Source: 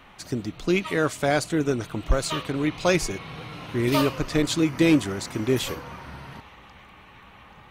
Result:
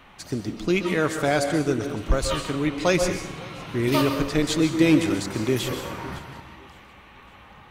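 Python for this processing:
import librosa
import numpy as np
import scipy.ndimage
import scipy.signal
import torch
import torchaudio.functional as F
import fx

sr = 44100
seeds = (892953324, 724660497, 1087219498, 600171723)

p1 = x + fx.echo_feedback(x, sr, ms=558, feedback_pct=42, wet_db=-23.0, dry=0)
p2 = fx.rev_plate(p1, sr, seeds[0], rt60_s=0.62, hf_ratio=0.9, predelay_ms=115, drr_db=7.0)
y = fx.band_squash(p2, sr, depth_pct=40, at=(5.1, 6.19))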